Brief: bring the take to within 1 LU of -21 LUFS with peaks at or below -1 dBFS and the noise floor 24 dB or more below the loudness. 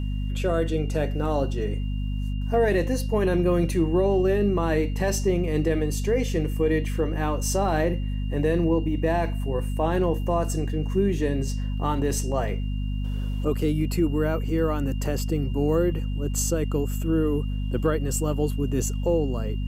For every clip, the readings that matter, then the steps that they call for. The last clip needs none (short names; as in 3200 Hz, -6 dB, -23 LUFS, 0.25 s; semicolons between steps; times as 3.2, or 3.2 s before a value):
hum 50 Hz; harmonics up to 250 Hz; hum level -25 dBFS; steady tone 2800 Hz; tone level -48 dBFS; loudness -25.0 LUFS; peak -10.5 dBFS; loudness target -21.0 LUFS
-> notches 50/100/150/200/250 Hz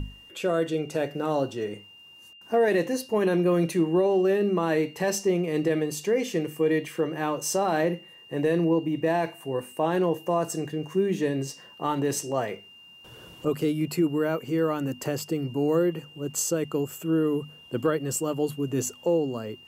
hum none; steady tone 2800 Hz; tone level -48 dBFS
-> notch 2800 Hz, Q 30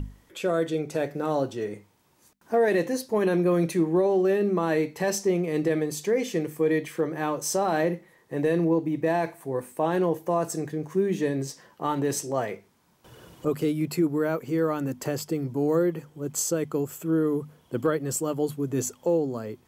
steady tone none; loudness -26.5 LUFS; peak -13.0 dBFS; loudness target -21.0 LUFS
-> gain +5.5 dB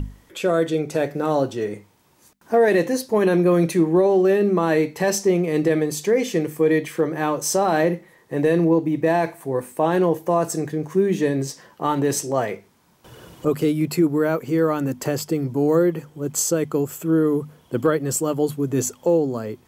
loudness -21.0 LUFS; peak -7.5 dBFS; noise floor -56 dBFS